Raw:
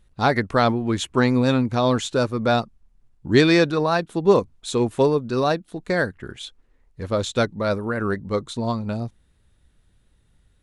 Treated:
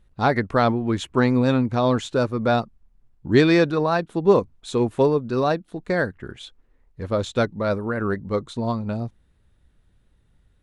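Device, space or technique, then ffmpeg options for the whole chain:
behind a face mask: -af "highshelf=f=3.4k:g=-8"

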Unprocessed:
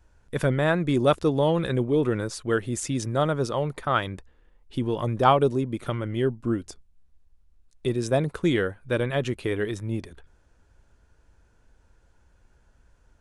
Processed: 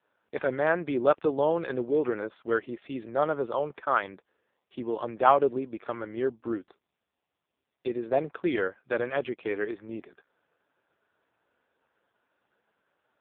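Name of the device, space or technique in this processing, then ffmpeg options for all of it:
telephone: -af "highpass=360,lowpass=3.3k" -ar 8000 -c:a libopencore_amrnb -b:a 5150

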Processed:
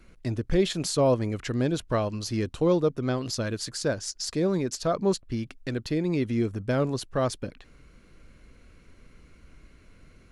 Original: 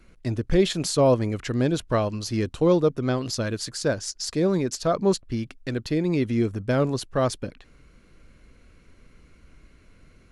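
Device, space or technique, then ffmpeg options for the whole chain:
parallel compression: -filter_complex "[0:a]asplit=2[a][b];[b]acompressor=threshold=-34dB:ratio=6,volume=-4.5dB[c];[a][c]amix=inputs=2:normalize=0,volume=-4dB"

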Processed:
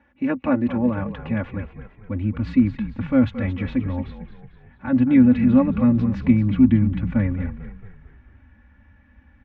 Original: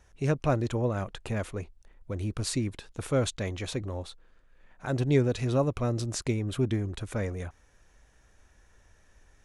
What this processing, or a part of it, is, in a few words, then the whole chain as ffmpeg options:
bass cabinet: -filter_complex "[0:a]highpass=f=83:w=0.5412,highpass=f=83:w=1.3066,equalizer=f=87:t=q:w=4:g=-9,equalizer=f=130:t=q:w=4:g=-6,equalizer=f=250:t=q:w=4:g=10,equalizer=f=390:t=q:w=4:g=-9,equalizer=f=640:t=q:w=4:g=-6,equalizer=f=1.3k:t=q:w=4:g=-4,lowpass=f=2.4k:w=0.5412,lowpass=f=2.4k:w=1.3066,asubboost=boost=8.5:cutoff=130,aecho=1:1:3.5:0.93,asplit=6[a][b][c][d][e][f];[b]adelay=223,afreqshift=-39,volume=-11.5dB[g];[c]adelay=446,afreqshift=-78,volume=-17.7dB[h];[d]adelay=669,afreqshift=-117,volume=-23.9dB[i];[e]adelay=892,afreqshift=-156,volume=-30.1dB[j];[f]adelay=1115,afreqshift=-195,volume=-36.3dB[k];[a][g][h][i][j][k]amix=inputs=6:normalize=0,volume=4.5dB"

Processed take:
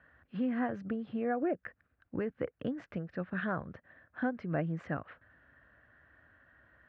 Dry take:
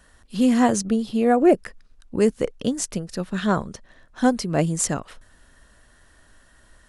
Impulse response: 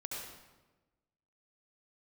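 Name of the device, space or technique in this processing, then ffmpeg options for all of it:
bass amplifier: -af "acompressor=threshold=-22dB:ratio=4,highpass=f=72:w=0.5412,highpass=f=72:w=1.3066,equalizer=f=210:t=q:w=4:g=-6,equalizer=f=400:t=q:w=4:g=-6,equalizer=f=940:t=q:w=4:g=-6,equalizer=f=1.6k:t=q:w=4:g=5,lowpass=f=2.2k:w=0.5412,lowpass=f=2.2k:w=1.3066,volume=-5.5dB"

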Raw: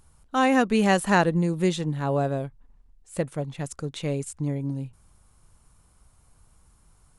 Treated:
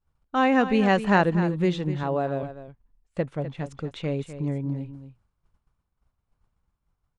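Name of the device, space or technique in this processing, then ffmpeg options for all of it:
hearing-loss simulation: -filter_complex "[0:a]asettb=1/sr,asplit=3[a][b][c];[a]atrim=end=2.034[d];[b]atrim=start=2.03:end=2.43,asetpts=PTS-STARTPTS,afade=t=in:d=0.004:c=qsin,afade=t=out:st=0.396:d=0.004:c=qsin,highpass=f=210:p=1[e];[c]atrim=start=2.426[f];[d][e]acrossfade=d=0.004:c1=hsin:c2=qsin[g];[g][f]acrossfade=d=0.004:c1=qsin:c2=hsin,lowpass=3.5k,agate=range=-33dB:threshold=-46dB:ratio=3:detection=peak,aecho=1:1:251:0.251"

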